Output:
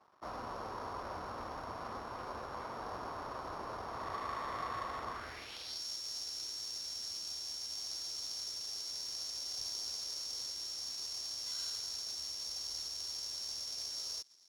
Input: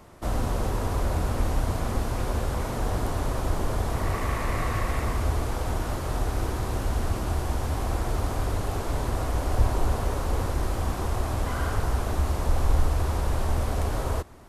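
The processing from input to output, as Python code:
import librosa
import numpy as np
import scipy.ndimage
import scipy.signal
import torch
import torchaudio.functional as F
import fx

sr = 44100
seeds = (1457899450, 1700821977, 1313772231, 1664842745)

y = np.r_[np.sort(x[:len(x) // 8 * 8].reshape(-1, 8), axis=1).ravel(), x[len(x) // 8 * 8:]]
y = fx.peak_eq(y, sr, hz=1000.0, db=-7.0, octaves=1.8)
y = np.sign(y) * np.maximum(np.abs(y) - 10.0 ** (-53.5 / 20.0), 0.0)
y = fx.filter_sweep_bandpass(y, sr, from_hz=1100.0, to_hz=5800.0, start_s=5.09, end_s=5.84, q=2.5)
y = y * 10.0 ** (3.5 / 20.0)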